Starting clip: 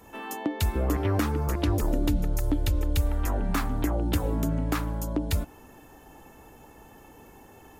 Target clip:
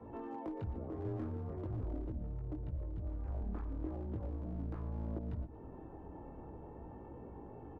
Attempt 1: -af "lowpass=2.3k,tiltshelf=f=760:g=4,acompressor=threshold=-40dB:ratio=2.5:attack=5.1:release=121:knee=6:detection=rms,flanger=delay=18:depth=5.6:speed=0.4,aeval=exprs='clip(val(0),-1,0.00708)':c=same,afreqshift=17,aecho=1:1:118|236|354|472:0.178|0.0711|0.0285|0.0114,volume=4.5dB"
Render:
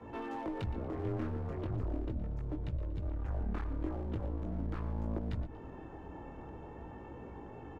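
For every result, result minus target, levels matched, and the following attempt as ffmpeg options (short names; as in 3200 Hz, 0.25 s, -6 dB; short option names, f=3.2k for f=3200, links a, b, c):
2000 Hz band +8.0 dB; compressor: peak gain reduction -4.5 dB
-af "lowpass=960,tiltshelf=f=760:g=4,acompressor=threshold=-40dB:ratio=2.5:attack=5.1:release=121:knee=6:detection=rms,flanger=delay=18:depth=5.6:speed=0.4,aeval=exprs='clip(val(0),-1,0.00708)':c=same,afreqshift=17,aecho=1:1:118|236|354|472:0.178|0.0711|0.0285|0.0114,volume=4.5dB"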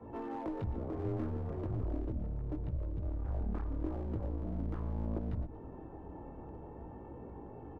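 compressor: peak gain reduction -4.5 dB
-af "lowpass=960,tiltshelf=f=760:g=4,acompressor=threshold=-47.5dB:ratio=2.5:attack=5.1:release=121:knee=6:detection=rms,flanger=delay=18:depth=5.6:speed=0.4,aeval=exprs='clip(val(0),-1,0.00708)':c=same,afreqshift=17,aecho=1:1:118|236|354|472:0.178|0.0711|0.0285|0.0114,volume=4.5dB"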